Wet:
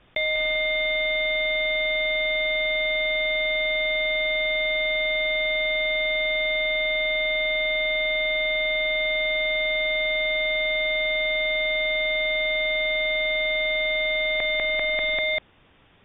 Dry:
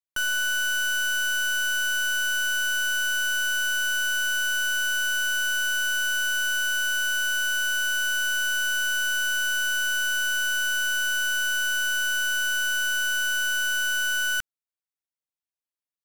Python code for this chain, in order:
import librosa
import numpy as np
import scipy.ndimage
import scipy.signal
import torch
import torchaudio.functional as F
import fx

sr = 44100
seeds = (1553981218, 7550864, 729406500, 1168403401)

y = fx.freq_invert(x, sr, carrier_hz=3600)
y = fx.low_shelf(y, sr, hz=450.0, db=11.5)
y = fx.echo_feedback(y, sr, ms=196, feedback_pct=43, wet_db=-8.5)
y = fx.env_flatten(y, sr, amount_pct=100)